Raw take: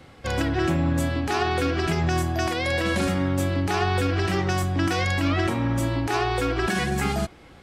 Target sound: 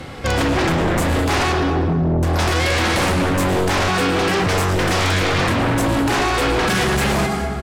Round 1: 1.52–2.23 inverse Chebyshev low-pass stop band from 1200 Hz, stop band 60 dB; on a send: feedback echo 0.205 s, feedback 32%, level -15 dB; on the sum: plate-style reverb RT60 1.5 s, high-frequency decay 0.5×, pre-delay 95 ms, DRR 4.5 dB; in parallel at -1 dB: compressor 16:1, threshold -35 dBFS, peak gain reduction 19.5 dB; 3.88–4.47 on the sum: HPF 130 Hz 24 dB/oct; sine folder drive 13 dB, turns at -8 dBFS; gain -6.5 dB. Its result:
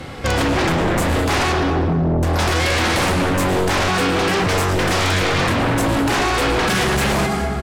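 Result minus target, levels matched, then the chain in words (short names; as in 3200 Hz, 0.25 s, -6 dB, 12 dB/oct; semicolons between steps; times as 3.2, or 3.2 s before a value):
compressor: peak gain reduction -10.5 dB
1.52–2.23 inverse Chebyshev low-pass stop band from 1200 Hz, stop band 60 dB; on a send: feedback echo 0.205 s, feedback 32%, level -15 dB; on the sum: plate-style reverb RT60 1.5 s, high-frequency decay 0.5×, pre-delay 95 ms, DRR 4.5 dB; in parallel at -1 dB: compressor 16:1, threshold -46 dBFS, peak gain reduction 30 dB; 3.88–4.47 on the sum: HPF 130 Hz 24 dB/oct; sine folder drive 13 dB, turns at -8 dBFS; gain -6.5 dB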